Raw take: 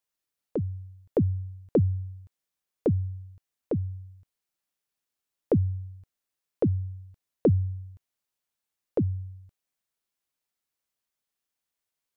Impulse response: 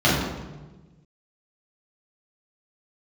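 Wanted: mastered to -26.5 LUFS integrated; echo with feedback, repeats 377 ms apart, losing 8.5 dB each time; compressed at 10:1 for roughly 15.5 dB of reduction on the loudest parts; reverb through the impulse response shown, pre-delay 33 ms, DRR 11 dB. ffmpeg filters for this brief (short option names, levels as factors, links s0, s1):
-filter_complex "[0:a]acompressor=threshold=0.02:ratio=10,aecho=1:1:377|754|1131|1508:0.376|0.143|0.0543|0.0206,asplit=2[s0][s1];[1:a]atrim=start_sample=2205,adelay=33[s2];[s1][s2]afir=irnorm=-1:irlink=0,volume=0.0251[s3];[s0][s3]amix=inputs=2:normalize=0,volume=5.31"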